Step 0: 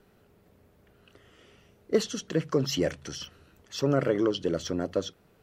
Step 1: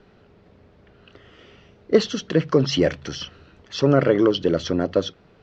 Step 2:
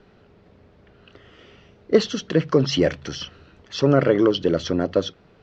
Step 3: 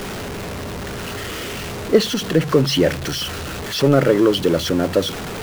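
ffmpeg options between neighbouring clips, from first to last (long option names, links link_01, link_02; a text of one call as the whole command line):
ffmpeg -i in.wav -af "lowpass=frequency=5100:width=0.5412,lowpass=frequency=5100:width=1.3066,volume=8dB" out.wav
ffmpeg -i in.wav -af anull out.wav
ffmpeg -i in.wav -af "aeval=exprs='val(0)+0.5*0.0596*sgn(val(0))':channel_layout=same,volume=1.5dB" out.wav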